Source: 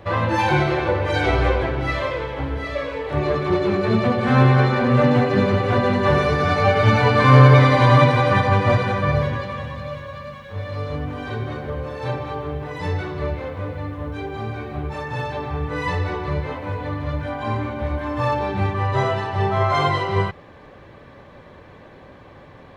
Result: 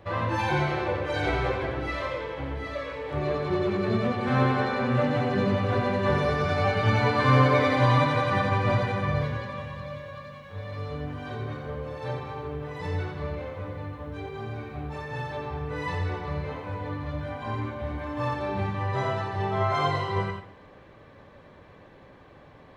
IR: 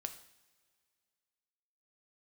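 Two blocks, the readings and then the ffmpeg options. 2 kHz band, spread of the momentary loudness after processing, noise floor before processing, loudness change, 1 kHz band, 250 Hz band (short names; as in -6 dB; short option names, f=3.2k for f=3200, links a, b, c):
-6.5 dB, 14 LU, -45 dBFS, -7.5 dB, -7.0 dB, -7.0 dB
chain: -filter_complex "[0:a]asplit=2[a][b];[1:a]atrim=start_sample=2205,adelay=88[c];[b][c]afir=irnorm=-1:irlink=0,volume=-2.5dB[d];[a][d]amix=inputs=2:normalize=0,volume=-8dB"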